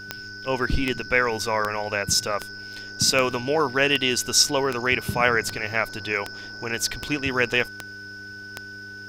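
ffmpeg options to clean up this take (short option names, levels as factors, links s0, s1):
-af "adeclick=t=4,bandreject=f=99.9:t=h:w=4,bandreject=f=199.8:t=h:w=4,bandreject=f=299.7:t=h:w=4,bandreject=f=399.6:t=h:w=4,bandreject=f=1500:w=30"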